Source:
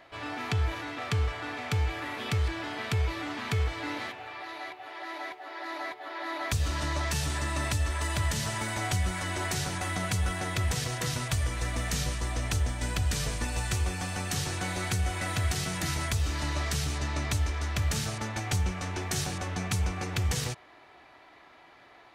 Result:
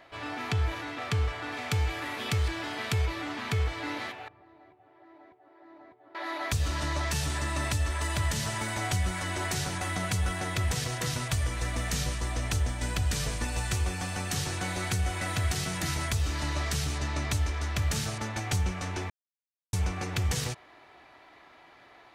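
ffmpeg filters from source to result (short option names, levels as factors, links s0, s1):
-filter_complex "[0:a]asettb=1/sr,asplit=3[s0][s1][s2];[s0]atrim=end=1.524[s3];[s1]atrim=start=1.52:end=3.06,asetpts=PTS-STARTPTS,afade=t=in:d=0.004:c=qsin,afade=t=out:st=1.536:d=0.004:c=qsin,highshelf=f=4200:g=5.5[s4];[s2]atrim=start=3.056[s5];[s3][s4]acrossfade=d=0.004:c1=hsin:c2=qsin[s6];[s6][s5]acrossfade=d=0.004:c1=qsin:c2=hsin,asettb=1/sr,asplit=3[s7][s8][s9];[s7]atrim=end=4.284[s10];[s8]atrim=start=4.28:end=6.15,asetpts=PTS-STARTPTS,afade=t=in:d=0.004:c=qsin,afade=t=out:st=1.866:d=0.004:c=qsin,bandpass=f=100:t=q:w=0.84[s11];[s9]atrim=start=6.146[s12];[s10][s11]acrossfade=d=0.004:c1=hsin:c2=qsin[s13];[s13][s12]acrossfade=d=0.004:c1=qsin:c2=hsin,asplit=3[s14][s15][s16];[s14]atrim=end=19.1,asetpts=PTS-STARTPTS,afade=t=out:st=19.096:d=0.004:c=hsin[s17];[s15]atrim=start=19.1:end=19.73,asetpts=PTS-STARTPTS,volume=0[s18];[s16]atrim=start=19.73,asetpts=PTS-STARTPTS,afade=t=in:d=0.004:c=hsin[s19];[s17][s18][s19]concat=n=3:v=0:a=1"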